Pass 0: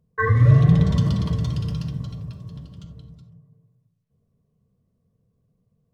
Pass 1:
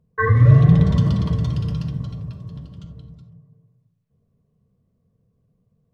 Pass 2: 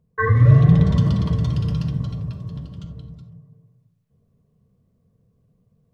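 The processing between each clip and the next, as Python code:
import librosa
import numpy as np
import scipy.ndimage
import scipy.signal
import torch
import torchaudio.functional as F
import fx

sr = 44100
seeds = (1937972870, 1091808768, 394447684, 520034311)

y1 = fx.high_shelf(x, sr, hz=4100.0, db=-8.0)
y1 = F.gain(torch.from_numpy(y1), 2.5).numpy()
y2 = fx.rider(y1, sr, range_db=4, speed_s=2.0)
y2 = F.gain(torch.from_numpy(y2), -1.0).numpy()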